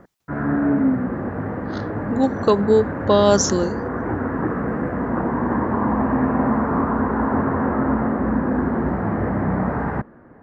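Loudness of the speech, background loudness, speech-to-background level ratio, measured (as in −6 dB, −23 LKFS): −19.0 LKFS, −22.5 LKFS, 3.5 dB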